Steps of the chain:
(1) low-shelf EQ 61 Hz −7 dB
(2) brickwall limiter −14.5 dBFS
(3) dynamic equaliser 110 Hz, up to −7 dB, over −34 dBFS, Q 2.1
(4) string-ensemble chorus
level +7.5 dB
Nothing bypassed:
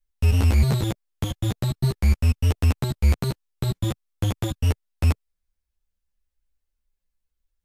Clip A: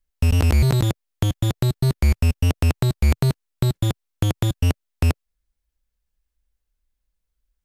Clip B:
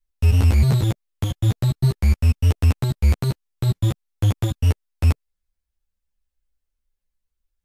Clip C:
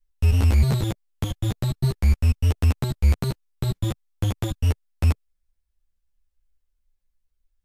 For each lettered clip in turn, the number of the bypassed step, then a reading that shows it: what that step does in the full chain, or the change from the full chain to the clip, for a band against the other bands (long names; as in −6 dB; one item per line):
4, change in momentary loudness spread −2 LU
3, change in integrated loudness +3.0 LU
1, 125 Hz band +1.5 dB